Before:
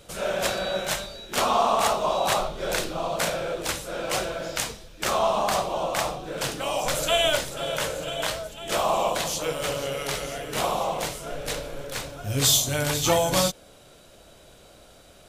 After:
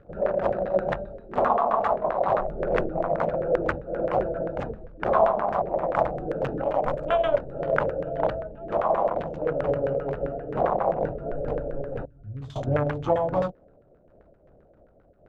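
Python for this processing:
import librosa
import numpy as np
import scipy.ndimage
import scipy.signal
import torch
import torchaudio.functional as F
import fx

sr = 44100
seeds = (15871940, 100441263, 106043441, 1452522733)

y = fx.wiener(x, sr, points=41)
y = fx.dmg_crackle(y, sr, seeds[0], per_s=170.0, level_db=-48.0)
y = fx.filter_lfo_lowpass(y, sr, shape='saw_down', hz=7.6, low_hz=490.0, high_hz=1700.0, q=2.4)
y = fx.tone_stack(y, sr, knobs='6-0-2', at=(12.05, 12.56))
y = fx.rider(y, sr, range_db=4, speed_s=0.5)
y = fx.high_shelf(y, sr, hz=7200.0, db=10.0, at=(5.95, 7.09))
y = fx.am_noise(y, sr, seeds[1], hz=5.7, depth_pct=60)
y = y * librosa.db_to_amplitude(3.0)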